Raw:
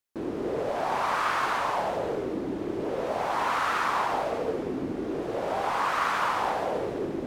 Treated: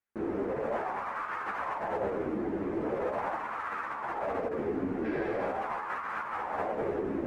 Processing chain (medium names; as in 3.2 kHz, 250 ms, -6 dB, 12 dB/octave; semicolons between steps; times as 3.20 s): spectral replace 5.07–5.51 s, 1.5–5.7 kHz after; compressor with a negative ratio -30 dBFS, ratio -0.5; resonant high shelf 2.7 kHz -10.5 dB, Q 1.5; three-phase chorus